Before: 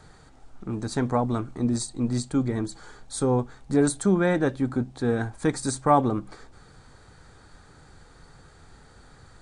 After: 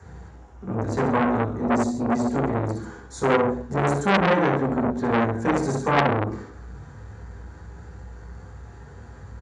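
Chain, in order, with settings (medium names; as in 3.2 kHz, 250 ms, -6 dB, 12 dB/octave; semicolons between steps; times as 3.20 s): multi-tap echo 65/139 ms -6.5/-12.5 dB; reverberation RT60 0.45 s, pre-delay 3 ms, DRR -2.5 dB; transformer saturation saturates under 2 kHz; trim -8 dB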